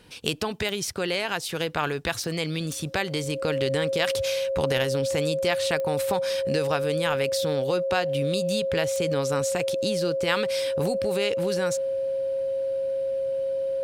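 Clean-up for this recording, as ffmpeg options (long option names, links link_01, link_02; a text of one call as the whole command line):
ffmpeg -i in.wav -af "adeclick=threshold=4,bandreject=frequency=540:width=30" out.wav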